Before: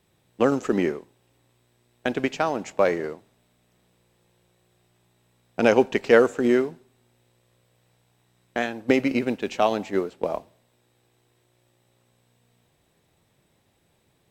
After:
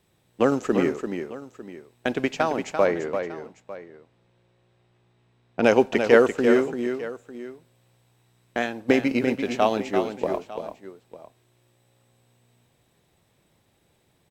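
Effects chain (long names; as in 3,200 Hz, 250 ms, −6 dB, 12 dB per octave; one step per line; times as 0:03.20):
0:02.85–0:05.64: Bessel low-pass filter 3,300 Hz, order 2
multi-tap delay 341/900 ms −7.5/−17.5 dB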